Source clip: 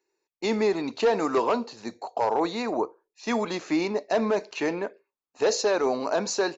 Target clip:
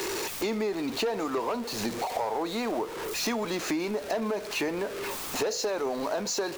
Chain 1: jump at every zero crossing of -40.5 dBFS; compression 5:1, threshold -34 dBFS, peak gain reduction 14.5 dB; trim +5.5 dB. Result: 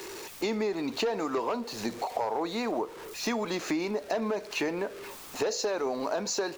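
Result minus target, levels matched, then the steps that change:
jump at every zero crossing: distortion -9 dB
change: jump at every zero crossing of -31 dBFS

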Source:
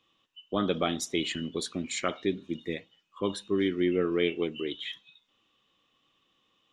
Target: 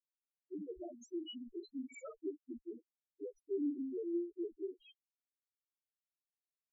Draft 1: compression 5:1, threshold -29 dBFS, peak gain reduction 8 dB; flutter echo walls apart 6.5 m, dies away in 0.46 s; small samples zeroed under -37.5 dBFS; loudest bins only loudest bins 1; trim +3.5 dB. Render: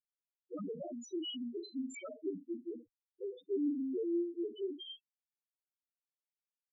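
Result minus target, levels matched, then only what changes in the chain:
small samples zeroed: distortion -10 dB
change: small samples zeroed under -29 dBFS

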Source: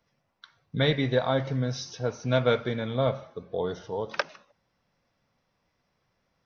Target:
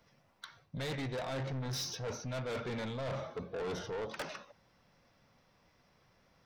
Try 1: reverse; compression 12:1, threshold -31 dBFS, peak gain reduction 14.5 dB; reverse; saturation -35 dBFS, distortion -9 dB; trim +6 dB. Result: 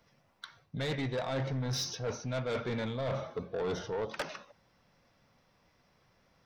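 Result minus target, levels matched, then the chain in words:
saturation: distortion -4 dB
reverse; compression 12:1, threshold -31 dBFS, peak gain reduction 14.5 dB; reverse; saturation -41 dBFS, distortion -5 dB; trim +6 dB

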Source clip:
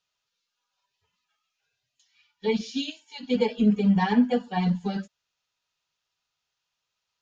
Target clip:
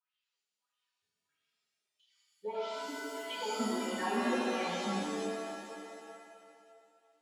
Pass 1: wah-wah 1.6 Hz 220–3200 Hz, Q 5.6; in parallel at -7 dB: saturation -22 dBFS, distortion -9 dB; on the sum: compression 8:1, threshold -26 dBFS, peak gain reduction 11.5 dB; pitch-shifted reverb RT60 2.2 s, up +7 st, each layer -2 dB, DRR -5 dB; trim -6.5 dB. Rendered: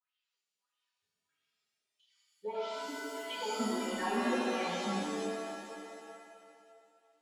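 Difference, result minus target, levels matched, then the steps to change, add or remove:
saturation: distortion +8 dB
change: saturation -15.5 dBFS, distortion -17 dB

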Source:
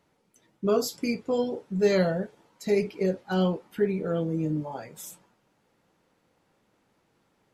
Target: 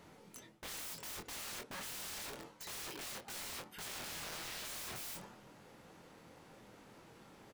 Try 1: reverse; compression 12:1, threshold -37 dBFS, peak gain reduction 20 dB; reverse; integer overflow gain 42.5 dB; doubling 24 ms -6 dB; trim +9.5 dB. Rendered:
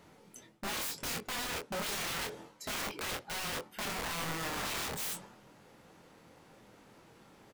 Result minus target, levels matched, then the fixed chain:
integer overflow: distortion -7 dB
reverse; compression 12:1, threshold -37 dBFS, peak gain reduction 20 dB; reverse; integer overflow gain 51 dB; doubling 24 ms -6 dB; trim +9.5 dB

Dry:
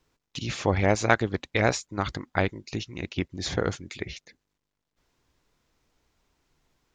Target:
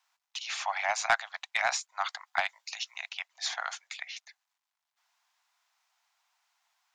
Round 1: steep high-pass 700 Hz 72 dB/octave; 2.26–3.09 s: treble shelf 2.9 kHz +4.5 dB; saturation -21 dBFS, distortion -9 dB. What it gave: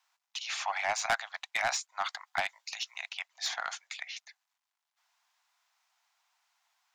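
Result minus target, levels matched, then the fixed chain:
saturation: distortion +7 dB
steep high-pass 700 Hz 72 dB/octave; 2.26–3.09 s: treble shelf 2.9 kHz +4.5 dB; saturation -13.5 dBFS, distortion -16 dB

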